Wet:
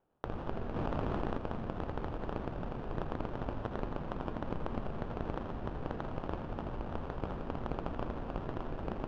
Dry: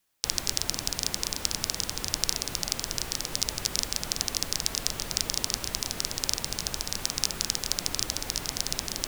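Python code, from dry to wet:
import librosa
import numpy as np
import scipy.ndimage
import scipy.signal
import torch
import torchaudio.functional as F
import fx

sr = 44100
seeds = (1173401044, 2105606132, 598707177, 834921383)

p1 = fx.peak_eq(x, sr, hz=2500.0, db=-14.0, octaves=0.98)
p2 = fx.comb_fb(p1, sr, f0_hz=230.0, decay_s=1.1, harmonics='all', damping=0.0, mix_pct=60)
p3 = fx.sample_hold(p2, sr, seeds[0], rate_hz=2100.0, jitter_pct=20)
p4 = 10.0 ** (-24.5 / 20.0) * np.tanh(p3 / 10.0 ** (-24.5 / 20.0))
p5 = fx.spacing_loss(p4, sr, db_at_10k=43)
p6 = p5 + fx.echo_single(p5, sr, ms=83, db=-11.5, dry=0)
p7 = fx.env_flatten(p6, sr, amount_pct=100, at=(0.76, 1.38))
y = F.gain(torch.from_numpy(p7), 7.5).numpy()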